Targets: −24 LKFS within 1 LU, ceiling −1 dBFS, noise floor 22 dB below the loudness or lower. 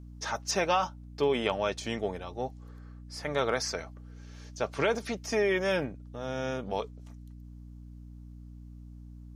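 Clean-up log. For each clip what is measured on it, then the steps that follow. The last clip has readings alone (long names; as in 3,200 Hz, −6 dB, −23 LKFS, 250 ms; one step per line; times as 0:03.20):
mains hum 60 Hz; hum harmonics up to 300 Hz; level of the hum −44 dBFS; integrated loudness −31.5 LKFS; sample peak −13.5 dBFS; target loudness −24.0 LKFS
→ hum removal 60 Hz, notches 5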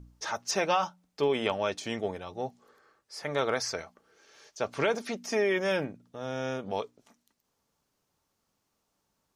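mains hum none found; integrated loudness −31.5 LKFS; sample peak −13.5 dBFS; target loudness −24.0 LKFS
→ level +7.5 dB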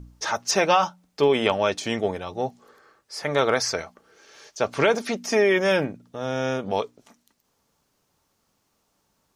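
integrated loudness −24.0 LKFS; sample peak −6.0 dBFS; background noise floor −71 dBFS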